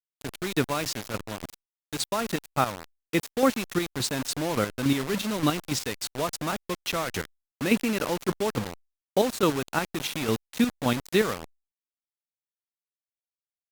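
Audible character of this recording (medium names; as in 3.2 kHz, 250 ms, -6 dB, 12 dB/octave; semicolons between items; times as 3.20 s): chopped level 3.5 Hz, depth 60%, duty 25%; a quantiser's noise floor 6-bit, dither none; Opus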